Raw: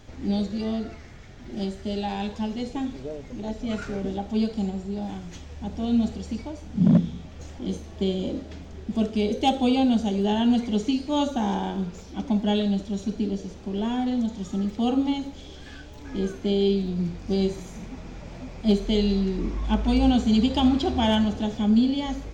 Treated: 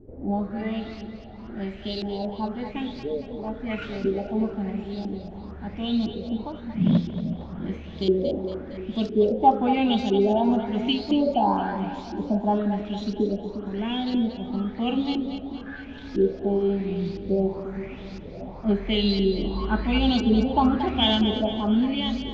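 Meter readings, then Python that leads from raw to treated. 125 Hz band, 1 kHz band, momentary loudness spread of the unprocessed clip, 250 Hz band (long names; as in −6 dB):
−1.5 dB, +4.5 dB, 17 LU, −1.0 dB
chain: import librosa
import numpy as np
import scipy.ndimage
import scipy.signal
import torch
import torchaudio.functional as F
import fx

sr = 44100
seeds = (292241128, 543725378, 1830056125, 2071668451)

y = fx.filter_lfo_lowpass(x, sr, shape='saw_up', hz=0.99, low_hz=340.0, high_hz=5200.0, q=4.8)
y = fx.echo_split(y, sr, split_hz=380.0, low_ms=356, high_ms=230, feedback_pct=52, wet_db=-9.5)
y = y * 10.0 ** (-2.5 / 20.0)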